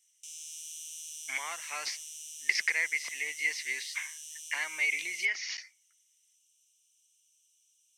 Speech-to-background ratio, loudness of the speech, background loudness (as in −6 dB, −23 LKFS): 10.0 dB, −32.0 LKFS, −42.0 LKFS